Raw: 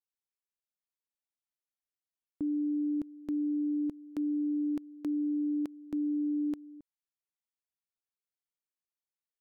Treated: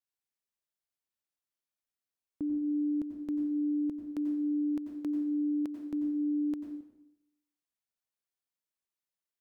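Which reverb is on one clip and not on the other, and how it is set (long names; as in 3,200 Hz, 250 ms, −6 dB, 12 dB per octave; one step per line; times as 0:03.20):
dense smooth reverb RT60 0.82 s, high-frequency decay 0.9×, pre-delay 80 ms, DRR 5 dB
level −1 dB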